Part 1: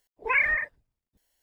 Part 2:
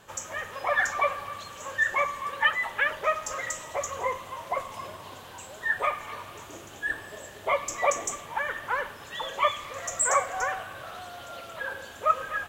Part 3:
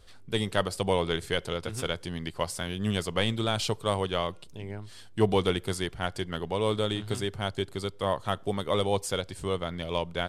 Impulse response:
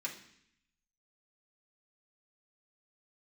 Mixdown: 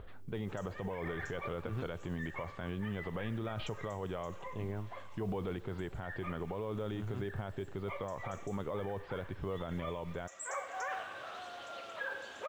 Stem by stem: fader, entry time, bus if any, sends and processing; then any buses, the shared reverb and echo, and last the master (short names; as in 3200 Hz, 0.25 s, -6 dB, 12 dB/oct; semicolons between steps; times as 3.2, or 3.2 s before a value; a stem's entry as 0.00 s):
-11.5 dB, 0.60 s, bus A, no send, dry
-5.0 dB, 0.40 s, no bus, send -16.5 dB, three-band isolator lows -12 dB, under 210 Hz, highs -21 dB, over 7100 Hz; auto duck -16 dB, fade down 0.70 s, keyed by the third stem
+0.5 dB, 0.00 s, bus A, no send, inverse Chebyshev low-pass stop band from 7200 Hz, stop band 40 dB
bus A: 0.0 dB, LPF 1700 Hz 12 dB/oct; limiter -21.5 dBFS, peak gain reduction 11 dB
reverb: on, RT60 0.65 s, pre-delay 3 ms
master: upward compressor, threshold -44 dBFS; modulation noise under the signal 35 dB; limiter -29.5 dBFS, peak gain reduction 14.5 dB